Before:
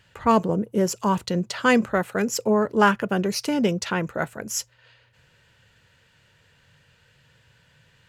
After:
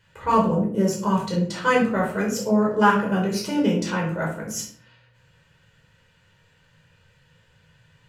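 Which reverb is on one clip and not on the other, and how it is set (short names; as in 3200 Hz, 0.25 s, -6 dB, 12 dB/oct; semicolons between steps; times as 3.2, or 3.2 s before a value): shoebox room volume 620 m³, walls furnished, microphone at 4.9 m; gain -8 dB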